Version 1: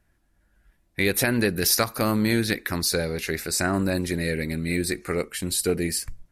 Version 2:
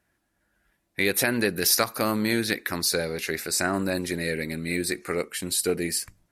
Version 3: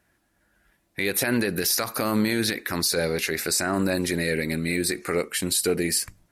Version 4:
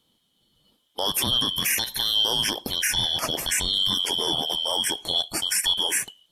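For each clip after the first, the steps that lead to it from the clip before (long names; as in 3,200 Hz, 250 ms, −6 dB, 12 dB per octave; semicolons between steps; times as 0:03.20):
high-pass filter 240 Hz 6 dB per octave
brickwall limiter −18 dBFS, peak gain reduction 11.5 dB; level +5 dB
band-splitting scrambler in four parts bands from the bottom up 2413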